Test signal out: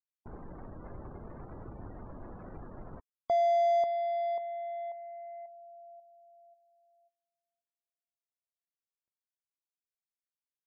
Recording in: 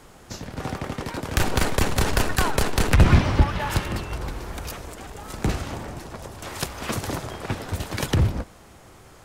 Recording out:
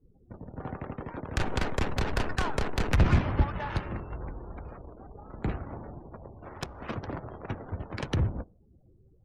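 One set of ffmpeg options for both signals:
ffmpeg -i in.wav -af "adynamicsmooth=sensitivity=4:basefreq=620,afftdn=noise_reduction=30:noise_floor=-43,volume=-7dB" out.wav

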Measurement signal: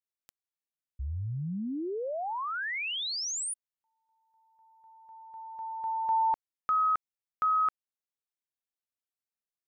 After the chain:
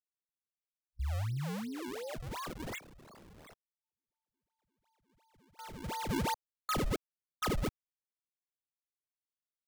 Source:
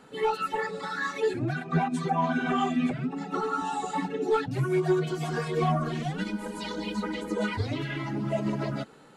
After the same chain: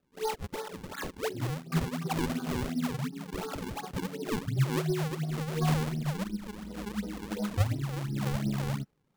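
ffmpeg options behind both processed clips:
ffmpeg -i in.wav -af "asubboost=boost=4:cutoff=170,afwtdn=0.0355,acrusher=samples=40:mix=1:aa=0.000001:lfo=1:lforange=64:lforate=2.8,volume=-5.5dB" out.wav

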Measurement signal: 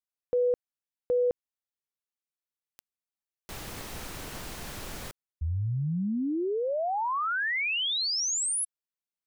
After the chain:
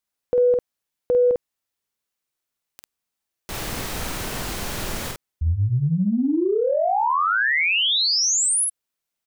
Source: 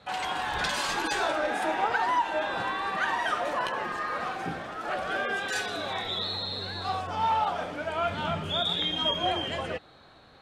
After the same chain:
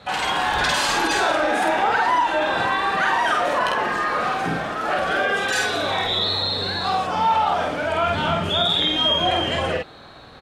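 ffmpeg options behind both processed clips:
ffmpeg -i in.wav -filter_complex "[0:a]asplit=2[link_01][link_02];[link_02]adelay=49,volume=-2.5dB[link_03];[link_01][link_03]amix=inputs=2:normalize=0,acompressor=threshold=-29dB:ratio=2:attack=6.2:release=34:knee=6:detection=peak,volume=9dB" out.wav

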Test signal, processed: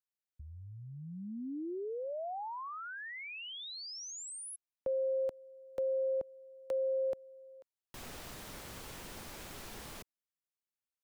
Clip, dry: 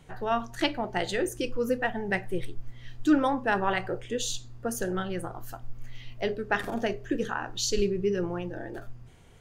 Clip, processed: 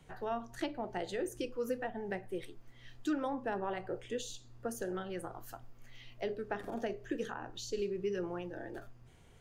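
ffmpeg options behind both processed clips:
ffmpeg -i in.wav -filter_complex "[0:a]acrossover=split=230|760[link_01][link_02][link_03];[link_01]acompressor=threshold=-44dB:ratio=4[link_04];[link_02]acompressor=threshold=-27dB:ratio=4[link_05];[link_03]acompressor=threshold=-39dB:ratio=4[link_06];[link_04][link_05][link_06]amix=inputs=3:normalize=0,volume=-5.5dB" out.wav

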